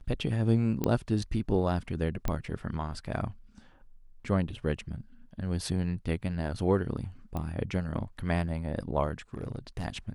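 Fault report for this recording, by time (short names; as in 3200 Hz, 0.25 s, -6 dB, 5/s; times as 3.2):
0.84 pop -14 dBFS
2.28 pop -16 dBFS
7.37 pop -22 dBFS
9.34–9.86 clipped -30.5 dBFS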